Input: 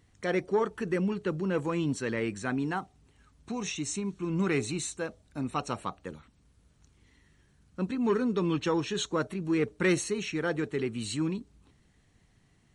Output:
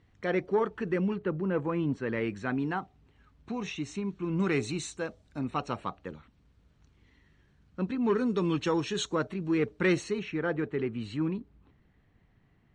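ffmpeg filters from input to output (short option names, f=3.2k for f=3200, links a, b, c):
-af "asetnsamples=n=441:p=0,asendcmd='1.16 lowpass f 2000;2.13 lowpass f 3400;4.4 lowpass f 6200;5.39 lowpass f 3900;8.18 lowpass f 9100;9.15 lowpass f 4400;10.19 lowpass f 2300',lowpass=3.4k"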